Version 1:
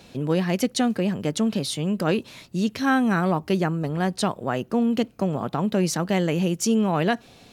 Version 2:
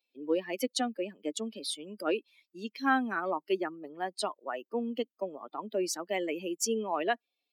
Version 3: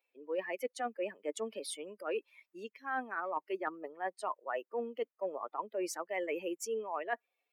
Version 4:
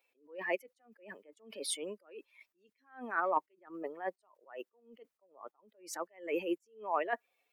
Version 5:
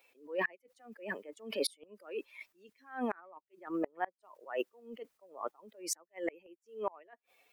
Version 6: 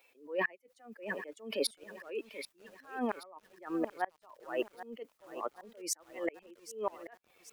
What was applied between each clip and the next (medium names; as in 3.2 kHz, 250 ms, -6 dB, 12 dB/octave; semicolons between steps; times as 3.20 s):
expander on every frequency bin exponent 2; steep high-pass 280 Hz 36 dB/octave; trim -2 dB
graphic EQ 125/250/500/1000/2000/4000 Hz -11/-6/+7/+7/+10/-11 dB; reverse; compression 16:1, threshold -31 dBFS, peak gain reduction 18.5 dB; reverse; trim -1.5 dB
attacks held to a fixed rise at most 150 dB/s; trim +6 dB
inverted gate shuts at -31 dBFS, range -33 dB; trim +10 dB
bit-crushed delay 782 ms, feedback 55%, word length 9-bit, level -13 dB; trim +1 dB